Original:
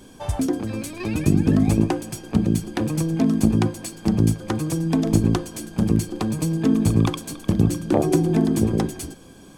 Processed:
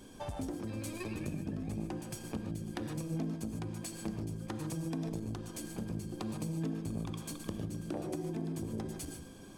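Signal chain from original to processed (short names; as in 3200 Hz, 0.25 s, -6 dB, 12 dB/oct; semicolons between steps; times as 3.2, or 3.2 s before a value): compressor 6:1, threshold -29 dBFS, peak gain reduction 16.5 dB; non-linear reverb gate 0.17 s rising, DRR 5.5 dB; core saturation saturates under 320 Hz; gain -7 dB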